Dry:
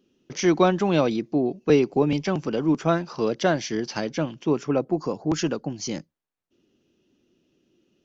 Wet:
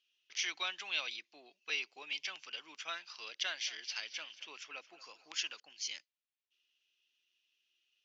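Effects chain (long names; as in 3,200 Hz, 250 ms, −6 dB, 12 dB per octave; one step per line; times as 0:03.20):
four-pole ladder band-pass 3,400 Hz, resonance 35%
0:03.44–0:05.60: feedback echo with a swinging delay time 225 ms, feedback 44%, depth 54 cents, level −17 dB
level +7.5 dB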